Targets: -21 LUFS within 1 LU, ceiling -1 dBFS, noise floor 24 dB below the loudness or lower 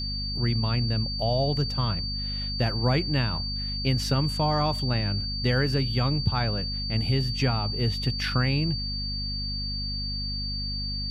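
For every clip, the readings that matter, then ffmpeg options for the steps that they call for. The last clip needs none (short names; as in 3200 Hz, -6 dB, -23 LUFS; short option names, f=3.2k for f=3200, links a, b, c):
hum 50 Hz; harmonics up to 250 Hz; hum level -31 dBFS; steady tone 4600 Hz; tone level -31 dBFS; loudness -26.5 LUFS; peak -11.0 dBFS; loudness target -21.0 LUFS
-> -af "bandreject=f=50:t=h:w=6,bandreject=f=100:t=h:w=6,bandreject=f=150:t=h:w=6,bandreject=f=200:t=h:w=6,bandreject=f=250:t=h:w=6"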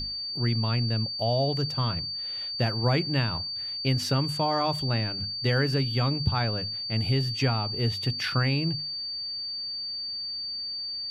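hum none; steady tone 4600 Hz; tone level -31 dBFS
-> -af "bandreject=f=4.6k:w=30"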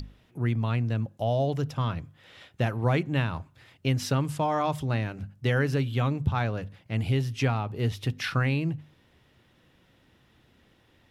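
steady tone none; loudness -28.5 LUFS; peak -12.5 dBFS; loudness target -21.0 LUFS
-> -af "volume=7.5dB"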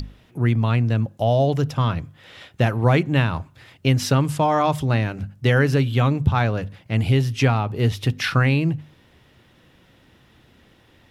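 loudness -21.0 LUFS; peak -5.0 dBFS; noise floor -56 dBFS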